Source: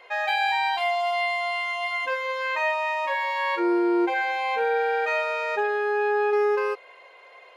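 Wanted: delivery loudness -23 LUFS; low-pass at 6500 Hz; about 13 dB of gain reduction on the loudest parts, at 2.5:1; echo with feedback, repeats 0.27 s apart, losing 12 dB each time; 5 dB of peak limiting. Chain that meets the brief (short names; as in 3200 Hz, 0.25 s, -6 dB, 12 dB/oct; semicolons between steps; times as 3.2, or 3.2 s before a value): LPF 6500 Hz; compressor 2.5:1, threshold -40 dBFS; limiter -31.5 dBFS; feedback echo 0.27 s, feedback 25%, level -12 dB; gain +15 dB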